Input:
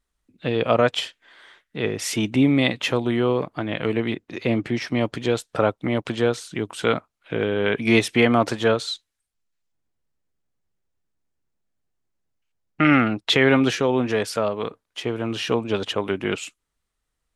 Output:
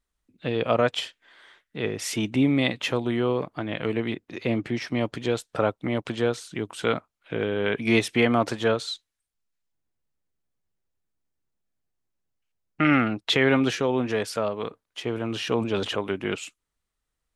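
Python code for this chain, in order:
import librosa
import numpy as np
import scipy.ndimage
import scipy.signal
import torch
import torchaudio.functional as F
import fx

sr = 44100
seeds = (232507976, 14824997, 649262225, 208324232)

y = fx.sustainer(x, sr, db_per_s=61.0, at=(15.03, 15.96))
y = y * librosa.db_to_amplitude(-3.5)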